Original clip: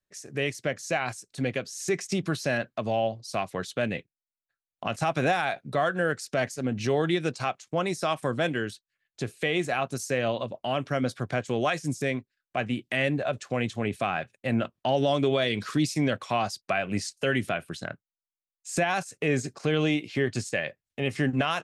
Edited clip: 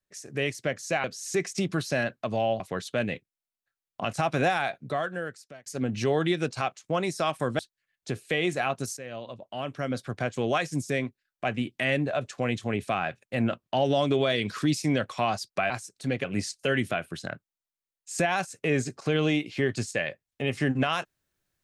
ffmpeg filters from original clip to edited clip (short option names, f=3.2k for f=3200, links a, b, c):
-filter_complex "[0:a]asplit=8[a][b][c][d][e][f][g][h];[a]atrim=end=1.042[i];[b]atrim=start=1.578:end=3.142[j];[c]atrim=start=3.428:end=6.49,asetpts=PTS-STARTPTS,afade=t=out:st=2.002:d=1.06[k];[d]atrim=start=6.49:end=8.422,asetpts=PTS-STARTPTS,afade=t=in:d=0.004:c=hsin[l];[e]atrim=start=8.708:end=10.09,asetpts=PTS-STARTPTS,afade=t=out:st=1.378:d=0.004:c=hsin:silence=0.177828[m];[f]atrim=start=10.09:end=16.822,asetpts=PTS-STARTPTS,afade=t=in:d=1.49:silence=0.177828[n];[g]atrim=start=1.038:end=1.582[o];[h]atrim=start=16.818[p];[i][j]acrossfade=d=0.004:c1=hsin:c2=hsin[q];[k][l]concat=n=2:v=0:a=1[r];[q][r]acrossfade=d=0.004:c1=hsin:c2=hsin[s];[m][n]concat=n=2:v=0:a=1[t];[s][t]acrossfade=d=0.004:c1=hsin:c2=hsin[u];[u][o]acrossfade=d=0.004:c1=hsin:c2=hsin[v];[v][p]acrossfade=d=0.004:c1=hsin:c2=hsin"